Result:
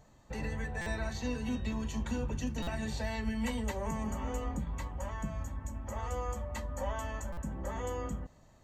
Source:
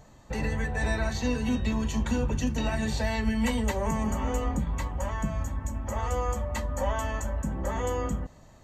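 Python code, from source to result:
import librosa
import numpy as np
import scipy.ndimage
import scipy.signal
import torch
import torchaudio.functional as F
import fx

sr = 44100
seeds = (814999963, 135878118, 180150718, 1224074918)

y = fx.buffer_glitch(x, sr, at_s=(0.81, 2.62, 7.32), block=256, repeats=8)
y = y * 10.0 ** (-7.5 / 20.0)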